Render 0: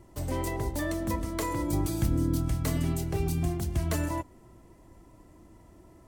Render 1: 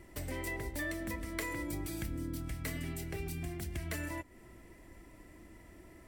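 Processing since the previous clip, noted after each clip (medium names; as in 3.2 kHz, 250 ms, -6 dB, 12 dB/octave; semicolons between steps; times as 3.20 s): band-stop 6.5 kHz, Q 18; compression 2.5:1, threshold -39 dBFS, peak gain reduction 12 dB; ten-band graphic EQ 125 Hz -5 dB, 1 kHz -6 dB, 2 kHz +11 dB, 16 kHz +4 dB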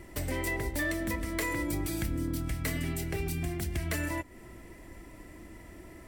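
overload inside the chain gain 30.5 dB; trim +6.5 dB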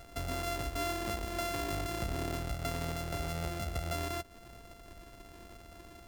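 sorted samples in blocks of 64 samples; trim -3.5 dB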